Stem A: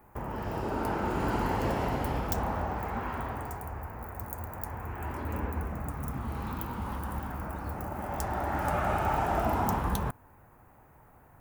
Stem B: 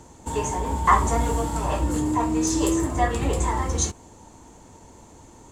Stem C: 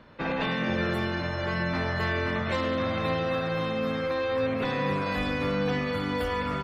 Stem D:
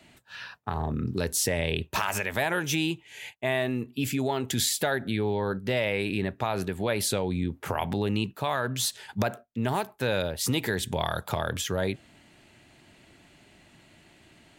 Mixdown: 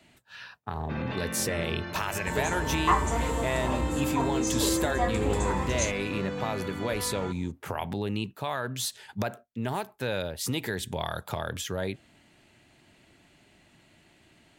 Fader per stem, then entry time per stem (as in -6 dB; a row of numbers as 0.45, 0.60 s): off, -6.0 dB, -7.5 dB, -3.5 dB; off, 2.00 s, 0.70 s, 0.00 s